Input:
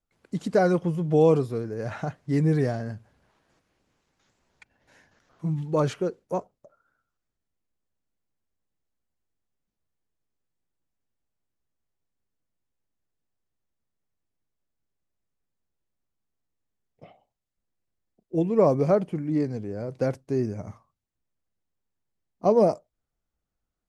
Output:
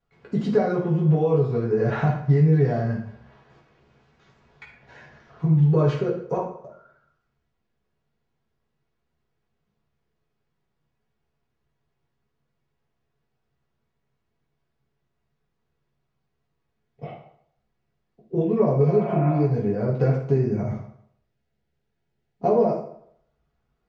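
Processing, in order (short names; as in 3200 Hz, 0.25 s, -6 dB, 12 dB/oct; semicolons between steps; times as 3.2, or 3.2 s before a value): 18.92–19.42 spectral repair 540–2800 Hz before; 20.65–22.48 bell 1100 Hz -14.5 dB 0.26 oct; compressor 5:1, threshold -32 dBFS, peak gain reduction 16 dB; air absorption 190 m; reverb RT60 0.65 s, pre-delay 3 ms, DRR -5 dB; gain +7 dB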